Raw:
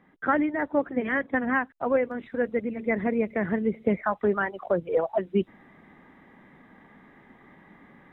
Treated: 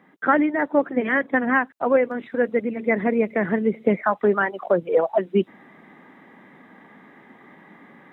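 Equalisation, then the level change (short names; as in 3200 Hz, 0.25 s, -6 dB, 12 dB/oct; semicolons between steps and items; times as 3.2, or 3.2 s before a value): HPF 180 Hz 12 dB/oct; +5.5 dB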